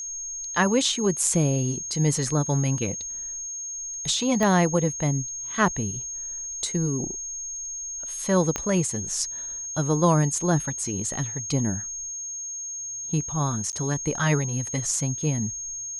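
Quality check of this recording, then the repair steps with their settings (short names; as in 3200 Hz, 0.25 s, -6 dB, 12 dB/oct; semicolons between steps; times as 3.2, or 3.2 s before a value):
tone 6500 Hz -31 dBFS
4.43 pop -12 dBFS
8.56 pop -11 dBFS
13.72–13.73 gap 9.8 ms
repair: de-click; notch 6500 Hz, Q 30; interpolate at 13.72, 9.8 ms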